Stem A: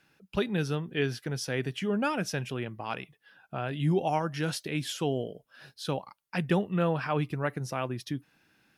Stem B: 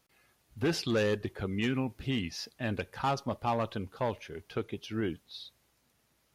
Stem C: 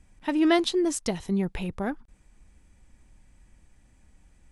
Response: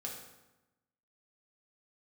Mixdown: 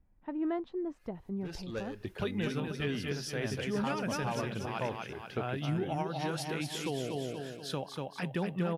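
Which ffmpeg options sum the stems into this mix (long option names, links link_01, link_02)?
-filter_complex "[0:a]adelay=1850,volume=-1.5dB,asplit=2[link_01][link_02];[link_02]volume=-4.5dB[link_03];[1:a]adelay=800,volume=-2dB[link_04];[2:a]lowpass=1200,volume=-11dB,asplit=2[link_05][link_06];[link_06]apad=whole_len=314960[link_07];[link_04][link_07]sidechaincompress=threshold=-56dB:ratio=4:attack=28:release=128[link_08];[link_03]aecho=0:1:240|480|720|960|1200|1440:1|0.46|0.212|0.0973|0.0448|0.0206[link_09];[link_01][link_08][link_05][link_09]amix=inputs=4:normalize=0,alimiter=limit=-23.5dB:level=0:latency=1:release=443"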